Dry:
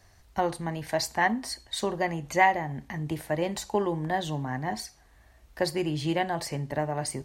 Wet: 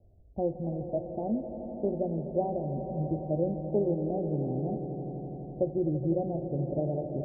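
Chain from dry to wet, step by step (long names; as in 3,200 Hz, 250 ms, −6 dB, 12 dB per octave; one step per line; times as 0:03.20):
Butterworth low-pass 630 Hz 48 dB per octave
echo that builds up and dies away 84 ms, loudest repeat 5, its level −13.5 dB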